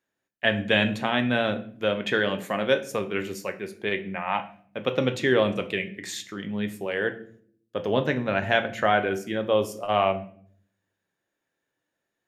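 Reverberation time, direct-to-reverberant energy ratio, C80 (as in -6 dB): 0.55 s, 7.0 dB, 18.0 dB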